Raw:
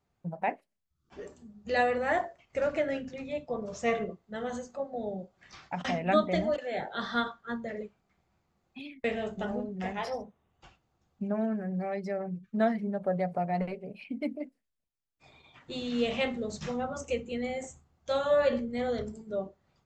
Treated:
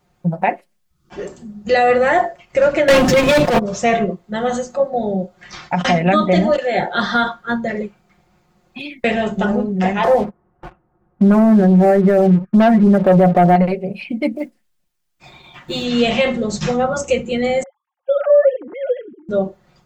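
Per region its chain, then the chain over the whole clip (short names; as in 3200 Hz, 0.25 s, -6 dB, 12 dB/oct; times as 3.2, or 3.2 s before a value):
2.88–3.59 sample leveller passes 5 + transient shaper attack -12 dB, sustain +9 dB
10.04–13.56 LPF 1600 Hz 24 dB/oct + bell 340 Hz +5 dB 0.36 oct + sample leveller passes 2
14.36–15.85 block floating point 7-bit + bell 480 Hz -6 dB 0.36 oct
17.63–19.29 sine-wave speech + high shelf 2900 Hz -7 dB
whole clip: comb 5.6 ms, depth 57%; maximiser +19.5 dB; gain -4.5 dB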